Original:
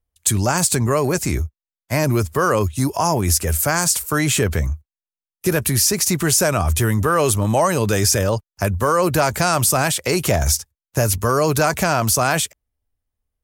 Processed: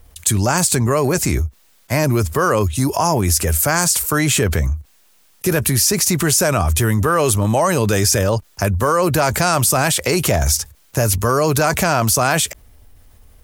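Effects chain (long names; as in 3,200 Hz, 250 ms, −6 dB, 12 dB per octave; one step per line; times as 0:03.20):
envelope flattener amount 50%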